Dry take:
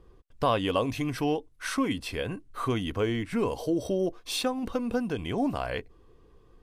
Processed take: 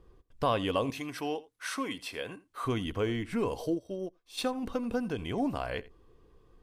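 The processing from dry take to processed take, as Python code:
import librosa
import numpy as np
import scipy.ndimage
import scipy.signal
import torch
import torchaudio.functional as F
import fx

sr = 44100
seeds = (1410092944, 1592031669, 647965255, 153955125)

p1 = fx.highpass(x, sr, hz=470.0, slope=6, at=(0.9, 2.65))
p2 = p1 + fx.echo_single(p1, sr, ms=84, db=-20.0, dry=0)
p3 = fx.upward_expand(p2, sr, threshold_db=-35.0, expansion=2.5, at=(3.74, 4.37), fade=0.02)
y = p3 * librosa.db_to_amplitude(-3.0)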